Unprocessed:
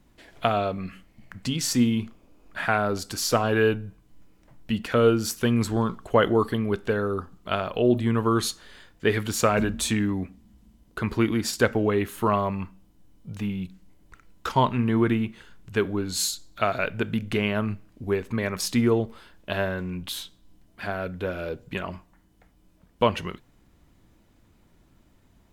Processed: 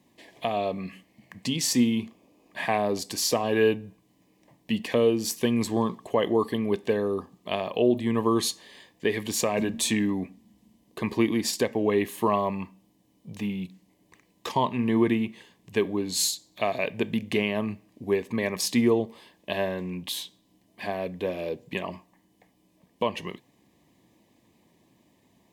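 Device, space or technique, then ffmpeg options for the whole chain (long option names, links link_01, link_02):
PA system with an anti-feedback notch: -af "highpass=170,asuperstop=centerf=1400:order=4:qfactor=2.7,alimiter=limit=-12.5dB:level=0:latency=1:release=316,volume=1dB"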